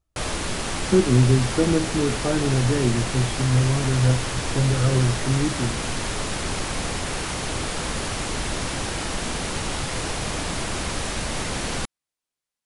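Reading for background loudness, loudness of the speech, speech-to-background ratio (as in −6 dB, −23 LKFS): −27.0 LKFS, −22.5 LKFS, 4.5 dB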